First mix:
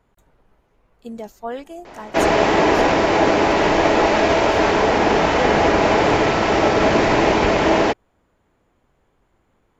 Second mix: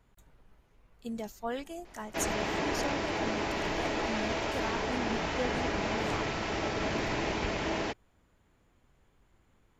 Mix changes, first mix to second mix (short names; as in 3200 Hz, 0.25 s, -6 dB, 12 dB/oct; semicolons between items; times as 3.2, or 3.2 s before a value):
background -11.0 dB; master: add bell 600 Hz -7.5 dB 2.9 oct